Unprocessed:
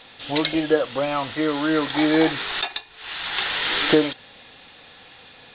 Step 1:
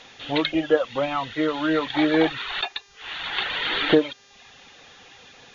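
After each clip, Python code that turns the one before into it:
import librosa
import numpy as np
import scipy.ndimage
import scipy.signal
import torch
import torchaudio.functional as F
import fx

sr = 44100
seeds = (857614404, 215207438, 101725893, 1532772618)

y = fx.dereverb_blind(x, sr, rt60_s=0.73)
y = fx.dmg_buzz(y, sr, base_hz=400.0, harmonics=17, level_db=-56.0, tilt_db=0, odd_only=False)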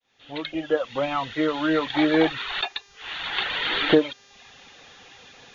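y = fx.fade_in_head(x, sr, length_s=1.13)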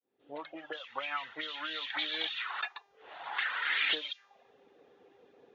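y = fx.auto_wah(x, sr, base_hz=350.0, top_hz=3400.0, q=2.9, full_db=-19.5, direction='up')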